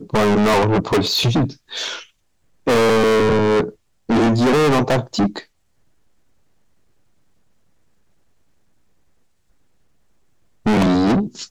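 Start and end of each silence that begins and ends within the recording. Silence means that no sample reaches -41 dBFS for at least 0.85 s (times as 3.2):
5.44–10.66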